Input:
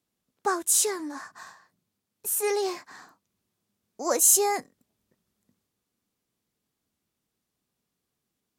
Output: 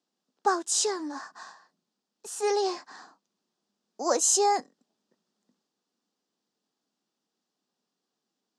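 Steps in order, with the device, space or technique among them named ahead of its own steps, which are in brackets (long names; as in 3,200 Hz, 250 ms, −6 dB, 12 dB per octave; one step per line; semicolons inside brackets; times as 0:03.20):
television speaker (loudspeaker in its box 200–7,200 Hz, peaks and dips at 800 Hz +4 dB, 2,200 Hz −8 dB, 4,900 Hz +4 dB)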